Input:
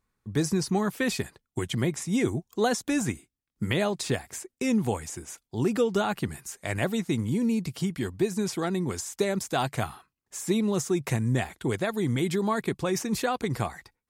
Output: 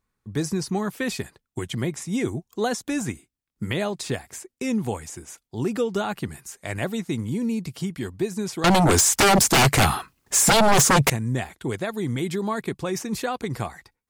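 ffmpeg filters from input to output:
-filter_complex "[0:a]asettb=1/sr,asplit=3[a][b][c];[a]atrim=end=8.644[d];[b]atrim=start=8.64:end=11.1,asetpts=PTS-STARTPTS,afade=t=in:d=0.004:c=qsin,afade=t=out:st=2.456:d=0.004:c=qsin,aeval=exprs='0.237*sin(PI/2*6.31*val(0)/0.237)':c=same[e];[c]atrim=start=11.096[f];[d][e]acrossfade=d=0.004:c1=hsin:c2=qsin[g];[g][f]acrossfade=d=0.004:c1=qsin:c2=hsin"

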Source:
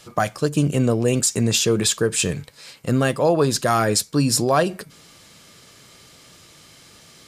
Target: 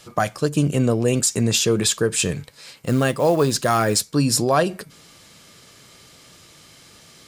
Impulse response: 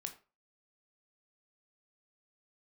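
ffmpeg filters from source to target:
-filter_complex "[0:a]asettb=1/sr,asplit=3[a][b][c];[a]atrim=end=2.774[d];[b]atrim=start=2.77:end=4.05,asetpts=PTS-STARTPTS,afade=t=in:d=0.004:c=qsin,afade=t=out:st=1.276:d=0.004:c=qsin,acrusher=bits=6:mode=log:mix=0:aa=0.000001[e];[c]atrim=start=4.046[f];[d][e]acrossfade=d=0.004:c1=hsin:c2=qsin[g];[g][f]acrossfade=d=0.004:c1=qsin:c2=hsin"

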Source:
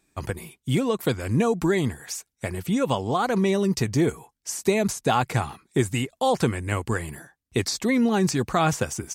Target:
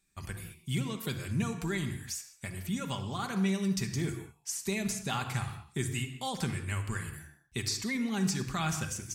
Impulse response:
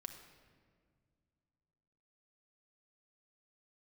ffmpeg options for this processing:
-filter_complex "[0:a]equalizer=f=510:t=o:w=2.3:g=-14[a];[1:a]atrim=start_sample=2205,afade=t=out:st=0.27:d=0.01,atrim=end_sample=12348[b];[a][b]afir=irnorm=-1:irlink=0"

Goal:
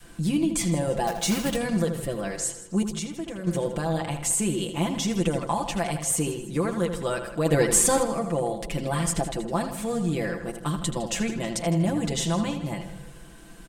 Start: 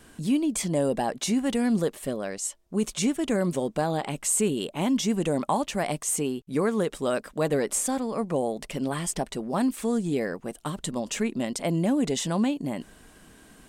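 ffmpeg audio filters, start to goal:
-filter_complex "[0:a]alimiter=limit=-16.5dB:level=0:latency=1:release=462,asplit=2[a][b];[b]asplit=4[c][d][e][f];[c]adelay=159,afreqshift=-52,volume=-16dB[g];[d]adelay=318,afreqshift=-104,volume=-22.7dB[h];[e]adelay=477,afreqshift=-156,volume=-29.5dB[i];[f]adelay=636,afreqshift=-208,volume=-36.2dB[j];[g][h][i][j]amix=inputs=4:normalize=0[k];[a][k]amix=inputs=2:normalize=0,asettb=1/sr,asplit=3[l][m][n];[l]atrim=end=2.824[o];[m]atrim=start=2.82:end=3.47,asetpts=PTS-STARTPTS,afade=t=in:d=0.004:c=qsin,afade=t=out:st=0.646:d=0.004:c=qsin,acompressor=threshold=-34dB:ratio=6[p];[n]atrim=start=3.466[q];[o][p]acrossfade=d=0.004:c1=hsin:c2=qsin[r];[r][q]acrossfade=d=0.004:c1=qsin:c2=hsin,lowshelf=f=77:g=8,asettb=1/sr,asplit=3[s][t][u];[s]atrim=end=1.074[v];[t]atrim=start=1.07:end=1.56,asetpts=PTS-STARTPTS,afade=t=in:d=0.004:c=qsin,afade=t=out:st=0.486:d=0.004:c=qsin,acrusher=bits=3:mode=log:mix=0:aa=0.000001[w];[u]atrim=start=1.556[x];[v][w]acrossfade=d=0.004:c1=hsin:c2=qsin[y];[y][x]acrossfade=d=0.004:c1=qsin:c2=hsin,adynamicequalizer=threshold=0.0141:dfrequency=300:dqfactor=0.88:tfrequency=300:tqfactor=0.88:attack=5:release=100:ratio=0.375:range=2.5:mode=cutabove:tftype=bell,aecho=1:1:5.9:0.86,asplit=3[z][aa][ab];[z]afade=t=out:st=7.45:d=0.02[ac];[aa]acontrast=60,afade=t=in:st=7.45:d=0.02,afade=t=out:st=8.03:d=0.02[ad];[ab]afade=t=in:st=8.03:d=0.02[ae];[ac][ad][ae]amix=inputs=3:normalize=0,asplit=2[af][ag];[ag]adelay=80,lowpass=f=3.7k:p=1,volume=-8dB,asplit=2[ah][ai];[ai]adelay=80,lowpass=f=3.7k:p=1,volume=0.47,asplit=2[aj][ak];[ak]adelay=80,lowpass=f=3.7k:p=1,volume=0.47,asplit=2[al][am];[am]adelay=80,lowpass=f=3.7k:p=1,volume=0.47,asplit=2[an][ao];[ao]adelay=80,lowpass=f=3.7k:p=1,volume=0.47[ap];[ah][aj][al][an][ap]amix=inputs=5:normalize=0[aq];[af][aq]amix=inputs=2:normalize=0"

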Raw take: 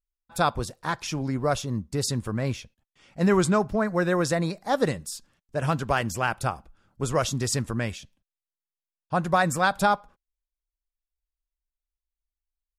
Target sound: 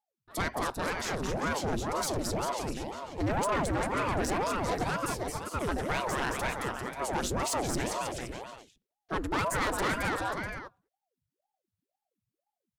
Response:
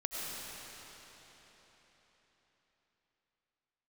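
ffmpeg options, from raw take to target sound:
-af "asetrate=46722,aresample=44100,atempo=0.943874,aecho=1:1:220|396|536.8|649.4|739.6:0.631|0.398|0.251|0.158|0.1,asoftclip=type=tanh:threshold=-23dB,aeval=exprs='val(0)*sin(2*PI*470*n/s+470*0.8/2*sin(2*PI*2*n/s))':c=same"

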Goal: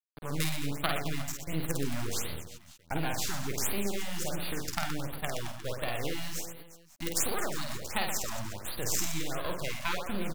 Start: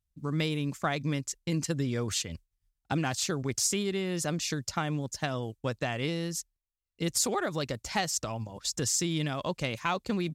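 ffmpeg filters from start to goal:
-af "acrusher=bits=4:dc=4:mix=0:aa=0.000001,aecho=1:1:50|120|218|355.2|547.3:0.631|0.398|0.251|0.158|0.1,afftfilt=real='re*(1-between(b*sr/1024,380*pow(6900/380,0.5+0.5*sin(2*PI*1.4*pts/sr))/1.41,380*pow(6900/380,0.5+0.5*sin(2*PI*1.4*pts/sr))*1.41))':imag='im*(1-between(b*sr/1024,380*pow(6900/380,0.5+0.5*sin(2*PI*1.4*pts/sr))/1.41,380*pow(6900/380,0.5+0.5*sin(2*PI*1.4*pts/sr))*1.41))':win_size=1024:overlap=0.75"

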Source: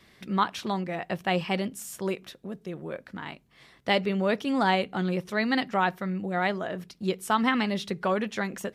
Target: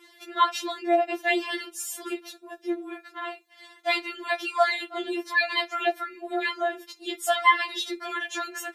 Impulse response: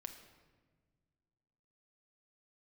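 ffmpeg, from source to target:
-filter_complex "[0:a]highpass=360,asplit=2[a][b];[1:a]atrim=start_sample=2205,atrim=end_sample=3087[c];[b][c]afir=irnorm=-1:irlink=0,volume=-1.5dB[d];[a][d]amix=inputs=2:normalize=0,afftfilt=real='re*4*eq(mod(b,16),0)':imag='im*4*eq(mod(b,16),0)':win_size=2048:overlap=0.75,volume=4dB"

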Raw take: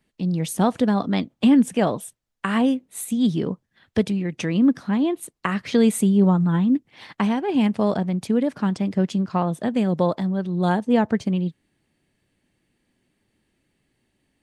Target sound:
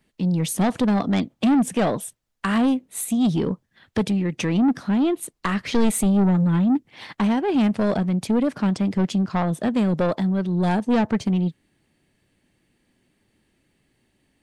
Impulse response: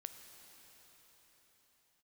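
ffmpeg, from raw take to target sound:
-filter_complex "[0:a]asoftclip=type=tanh:threshold=-18dB,asettb=1/sr,asplit=3[a][b][c];[a]atrim=end=5.084[d];[b]atrim=start=5.08:end=6.06,asetpts=PTS-STARTPTS,afade=t=in:d=0.004:c=qsin,afade=t=out:st=0.976:d=0.004:c=qsin,asubboost=boost=12:cutoff=52[e];[c]atrim=start=6.056[f];[d][e]acrossfade=d=0.004:c1=hsin:c2=qsin[g];[g][f]acrossfade=d=0.004:c1=qsin:c2=hsin,volume=3.5dB"

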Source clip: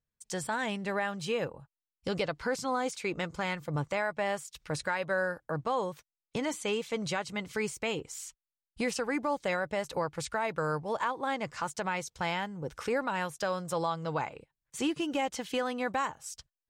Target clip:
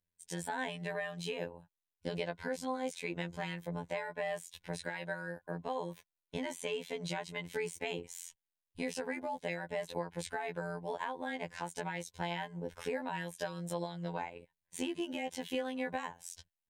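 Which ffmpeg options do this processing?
-af "acompressor=threshold=-33dB:ratio=2.5,superequalizer=10b=0.282:14b=0.562:15b=0.631,afftfilt=real='hypot(re,im)*cos(PI*b)':imag='0':win_size=2048:overlap=0.75,volume=1.5dB"

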